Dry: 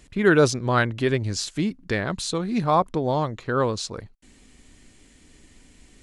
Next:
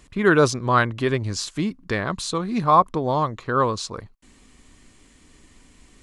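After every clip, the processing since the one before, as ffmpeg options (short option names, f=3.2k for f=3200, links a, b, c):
-af "equalizer=f=1.1k:w=3.4:g=8.5"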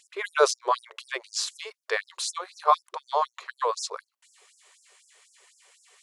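-af "afftfilt=real='re*gte(b*sr/1024,350*pow(5200/350,0.5+0.5*sin(2*PI*4*pts/sr)))':imag='im*gte(b*sr/1024,350*pow(5200/350,0.5+0.5*sin(2*PI*4*pts/sr)))':win_size=1024:overlap=0.75"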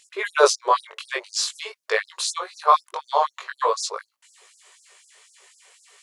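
-af "flanger=delay=18:depth=2.8:speed=0.46,volume=8dB"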